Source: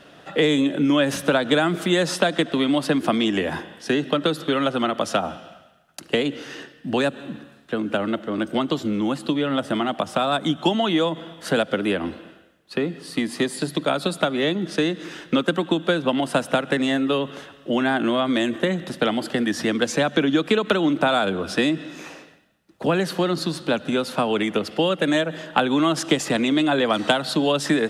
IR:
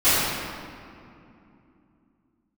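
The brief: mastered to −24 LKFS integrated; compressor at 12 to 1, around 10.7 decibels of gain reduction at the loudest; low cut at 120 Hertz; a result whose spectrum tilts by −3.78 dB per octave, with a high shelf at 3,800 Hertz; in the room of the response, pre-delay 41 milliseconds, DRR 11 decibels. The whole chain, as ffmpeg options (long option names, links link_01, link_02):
-filter_complex "[0:a]highpass=120,highshelf=frequency=3800:gain=-5,acompressor=threshold=-26dB:ratio=12,asplit=2[link_01][link_02];[1:a]atrim=start_sample=2205,adelay=41[link_03];[link_02][link_03]afir=irnorm=-1:irlink=0,volume=-32.5dB[link_04];[link_01][link_04]amix=inputs=2:normalize=0,volume=7dB"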